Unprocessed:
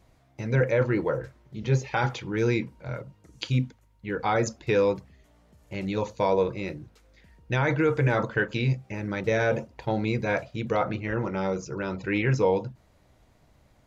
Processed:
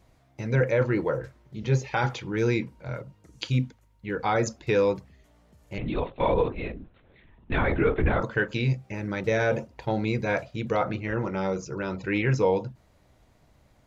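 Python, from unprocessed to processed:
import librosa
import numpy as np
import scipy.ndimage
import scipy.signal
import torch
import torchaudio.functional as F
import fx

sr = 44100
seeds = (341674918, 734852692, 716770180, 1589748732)

y = fx.lpc_vocoder(x, sr, seeds[0], excitation='whisper', order=10, at=(5.78, 8.21))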